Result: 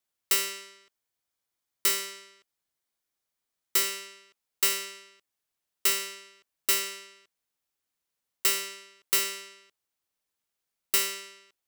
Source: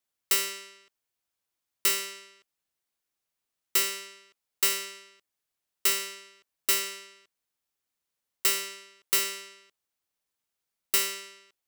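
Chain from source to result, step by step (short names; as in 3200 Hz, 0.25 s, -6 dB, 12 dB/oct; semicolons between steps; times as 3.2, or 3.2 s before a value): 0.61–3.85 notch 2700 Hz, Q 14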